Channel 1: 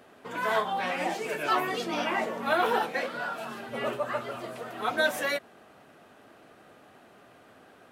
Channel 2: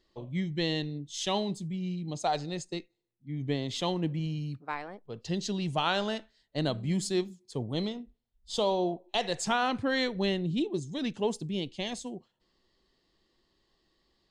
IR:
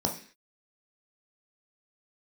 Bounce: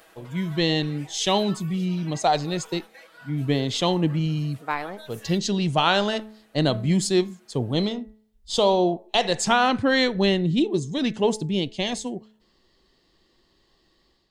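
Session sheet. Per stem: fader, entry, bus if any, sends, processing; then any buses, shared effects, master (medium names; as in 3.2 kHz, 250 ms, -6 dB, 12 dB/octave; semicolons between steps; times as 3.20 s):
+0.5 dB, 0.00 s, no send, compression 2:1, threshold -45 dBFS, peak gain reduction 13.5 dB; tilt EQ +3 dB/octave; comb 6.2 ms, depth 79%; auto duck -11 dB, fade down 0.45 s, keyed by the second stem
+1.5 dB, 0.00 s, no send, de-hum 216.1 Hz, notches 10; level rider gain up to 7 dB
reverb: none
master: none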